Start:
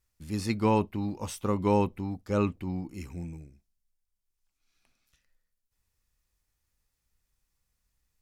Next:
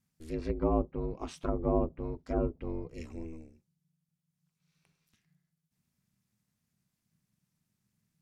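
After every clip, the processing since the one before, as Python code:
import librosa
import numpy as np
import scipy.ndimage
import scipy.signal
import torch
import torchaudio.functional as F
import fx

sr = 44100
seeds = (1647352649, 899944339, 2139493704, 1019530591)

y = fx.env_lowpass_down(x, sr, base_hz=660.0, full_db=-24.0)
y = y * np.sin(2.0 * np.pi * 160.0 * np.arange(len(y)) / sr)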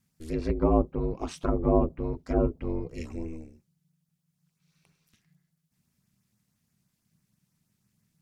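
y = fx.filter_lfo_notch(x, sr, shape='saw_up', hz=6.1, low_hz=390.0, high_hz=4200.0, q=2.6)
y = y * 10.0 ** (6.0 / 20.0)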